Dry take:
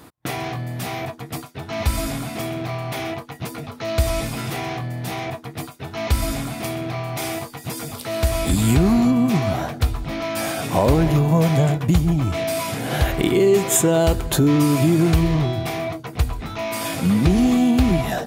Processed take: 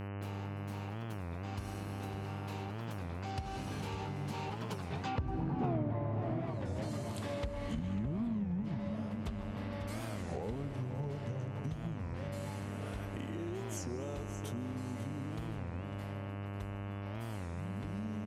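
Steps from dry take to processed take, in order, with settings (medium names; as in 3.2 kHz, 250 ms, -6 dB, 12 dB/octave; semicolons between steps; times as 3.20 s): Doppler pass-by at 5.74 s, 52 m/s, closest 5.8 m; in parallel at -9.5 dB: crossover distortion -43.5 dBFS; on the sum: peaking EQ 930 Hz +3.5 dB 0.35 oct; low-pass that closes with the level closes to 1.1 kHz, closed at -34 dBFS; feedback delay 546 ms, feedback 33%, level -12 dB; dynamic bell 130 Hz, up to +6 dB, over -52 dBFS, Q 1.3; small resonant body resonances 220/440 Hz, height 7 dB; mains buzz 100 Hz, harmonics 30, -52 dBFS -6 dB/octave; on a send at -12 dB: reverberation RT60 2.2 s, pre-delay 116 ms; on the sum: compression 4:1, threshold -47 dBFS, peak gain reduction 23 dB; warped record 33 1/3 rpm, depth 250 cents; trim +11 dB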